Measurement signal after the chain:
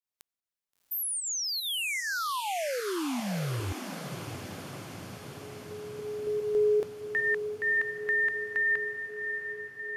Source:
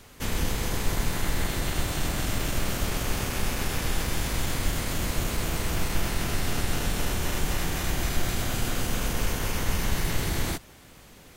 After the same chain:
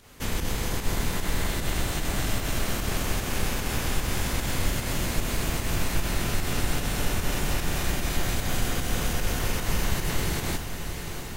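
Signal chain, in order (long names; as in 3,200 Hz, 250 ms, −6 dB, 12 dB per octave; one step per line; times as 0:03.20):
fake sidechain pumping 150 BPM, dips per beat 1, −8 dB, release 122 ms
feedback delay with all-pass diffusion 711 ms, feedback 69%, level −8.5 dB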